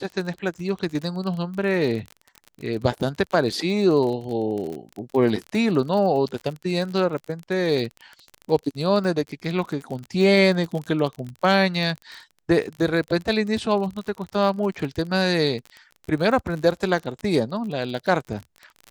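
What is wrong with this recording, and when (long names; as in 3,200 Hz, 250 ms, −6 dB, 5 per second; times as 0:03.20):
surface crackle 35 per second −29 dBFS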